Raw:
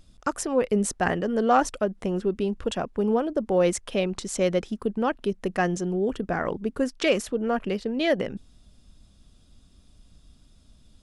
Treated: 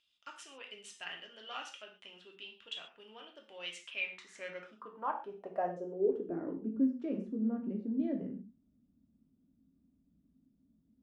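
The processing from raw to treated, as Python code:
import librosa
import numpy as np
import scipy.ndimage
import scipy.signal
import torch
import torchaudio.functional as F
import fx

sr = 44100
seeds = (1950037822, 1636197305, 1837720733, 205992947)

y = fx.rev_gated(x, sr, seeds[0], gate_ms=160, shape='falling', drr_db=1.0)
y = fx.filter_sweep_bandpass(y, sr, from_hz=3000.0, to_hz=240.0, start_s=3.76, end_s=6.76, q=5.0)
y = y * 10.0 ** (-2.5 / 20.0)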